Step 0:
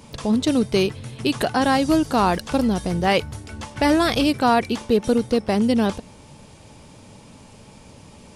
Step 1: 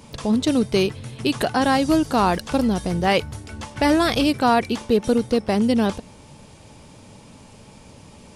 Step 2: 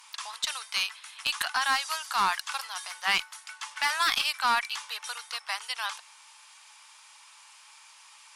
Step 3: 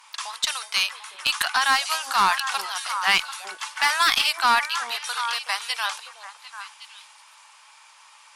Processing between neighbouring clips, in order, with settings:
no audible change
steep high-pass 1 kHz 36 dB/octave; one-sided clip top -19.5 dBFS
repeats whose band climbs or falls 371 ms, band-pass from 470 Hz, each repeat 1.4 oct, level -5 dB; tape noise reduction on one side only decoder only; trim +6 dB

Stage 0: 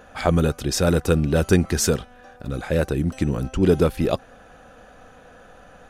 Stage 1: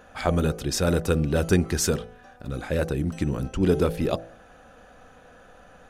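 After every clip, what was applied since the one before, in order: de-hum 54.95 Hz, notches 15; trim -3 dB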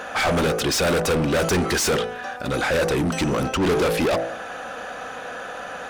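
overdrive pedal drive 33 dB, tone 5.7 kHz, clips at -7.5 dBFS; trim -5.5 dB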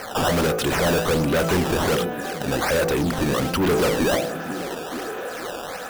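repeats whose band climbs or falls 461 ms, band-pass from 170 Hz, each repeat 0.7 oct, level -6.5 dB; decimation with a swept rate 12×, swing 160% 1.3 Hz

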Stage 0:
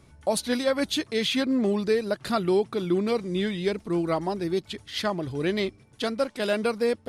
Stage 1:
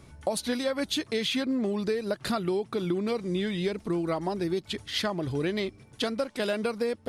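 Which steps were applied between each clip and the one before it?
compression, threshold -29 dBFS, peak gain reduction 10.5 dB; trim +3.5 dB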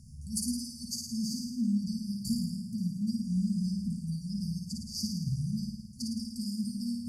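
flutter echo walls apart 9.4 m, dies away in 0.95 s; FFT band-reject 250–4500 Hz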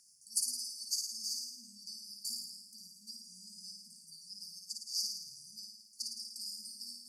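resonant high-pass 1.7 kHz, resonance Q 1.5; trim +1.5 dB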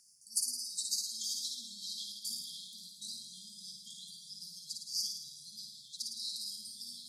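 ever faster or slower copies 344 ms, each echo -3 st, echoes 2, each echo -6 dB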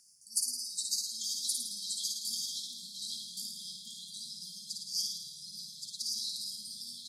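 delay 1122 ms -3 dB; trim +1.5 dB

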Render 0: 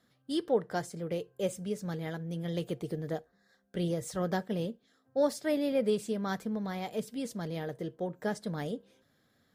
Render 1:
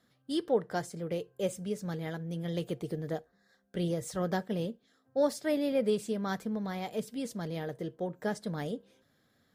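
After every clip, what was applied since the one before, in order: no audible change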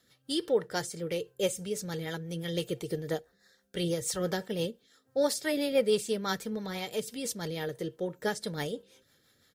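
treble shelf 2 kHz +11 dB; comb 2.2 ms, depth 33%; rotary cabinet horn 6 Hz; trim +2 dB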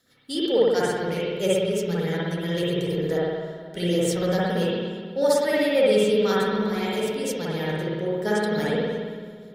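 flange 0.22 Hz, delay 3.8 ms, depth 2.3 ms, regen +89%; on a send: filtered feedback delay 233 ms, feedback 59%, low-pass 1.1 kHz, level -11 dB; on the sum: spring tank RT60 1.5 s, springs 57 ms, chirp 70 ms, DRR -7 dB; trim +5.5 dB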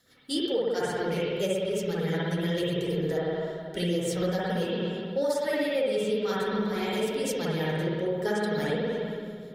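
compression, threshold -26 dBFS, peak gain reduction 11.5 dB; flange 1.1 Hz, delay 0.9 ms, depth 7.3 ms, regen -39%; trim +5 dB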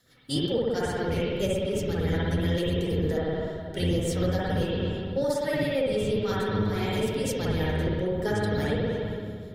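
octave divider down 1 oct, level +1 dB

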